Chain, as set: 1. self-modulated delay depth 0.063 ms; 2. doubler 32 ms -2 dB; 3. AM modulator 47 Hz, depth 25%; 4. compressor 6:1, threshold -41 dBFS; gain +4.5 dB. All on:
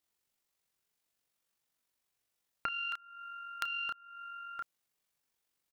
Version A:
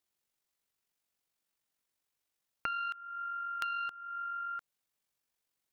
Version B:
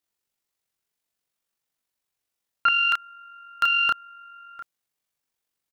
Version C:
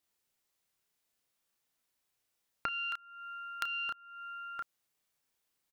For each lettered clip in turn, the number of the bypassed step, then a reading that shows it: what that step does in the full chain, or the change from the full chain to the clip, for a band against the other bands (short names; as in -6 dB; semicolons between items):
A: 2, 1 kHz band +7.0 dB; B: 4, mean gain reduction 7.5 dB; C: 3, 250 Hz band +1.5 dB